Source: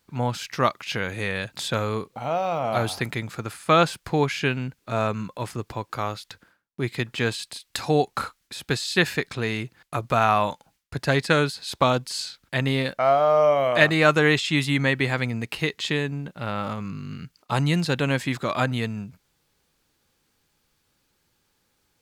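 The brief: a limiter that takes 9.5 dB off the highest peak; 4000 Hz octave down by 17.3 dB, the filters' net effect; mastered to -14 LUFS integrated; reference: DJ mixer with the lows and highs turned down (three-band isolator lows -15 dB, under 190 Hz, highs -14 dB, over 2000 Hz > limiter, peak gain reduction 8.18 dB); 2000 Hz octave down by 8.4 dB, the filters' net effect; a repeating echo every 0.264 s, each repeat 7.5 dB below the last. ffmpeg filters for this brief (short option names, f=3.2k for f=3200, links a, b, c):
-filter_complex "[0:a]equalizer=f=2k:t=o:g=-5,equalizer=f=4k:t=o:g=-6,alimiter=limit=-15.5dB:level=0:latency=1,acrossover=split=190 2000:gain=0.178 1 0.2[a][b][c];[a][b][c]amix=inputs=3:normalize=0,aecho=1:1:264|528|792|1056|1320:0.422|0.177|0.0744|0.0312|0.0131,volume=18.5dB,alimiter=limit=-2dB:level=0:latency=1"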